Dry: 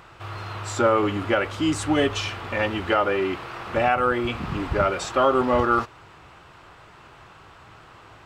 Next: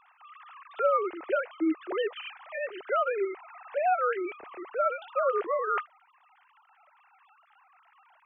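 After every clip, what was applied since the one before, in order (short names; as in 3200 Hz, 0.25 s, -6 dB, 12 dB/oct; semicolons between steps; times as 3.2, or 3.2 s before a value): sine-wave speech; gain -7 dB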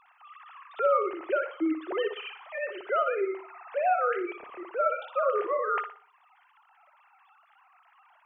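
flutter echo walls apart 10.3 m, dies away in 0.41 s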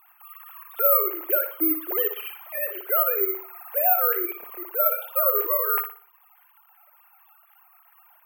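careless resampling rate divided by 3×, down filtered, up zero stuff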